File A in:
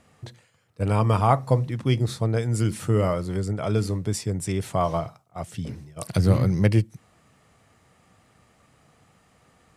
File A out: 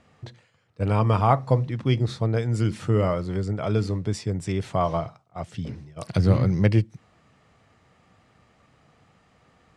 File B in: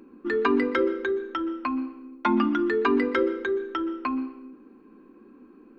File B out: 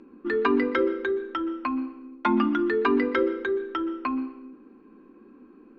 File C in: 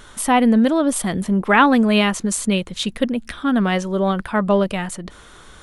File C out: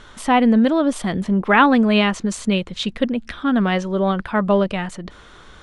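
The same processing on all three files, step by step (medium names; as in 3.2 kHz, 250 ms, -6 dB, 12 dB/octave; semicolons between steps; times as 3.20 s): low-pass 5.3 kHz 12 dB/octave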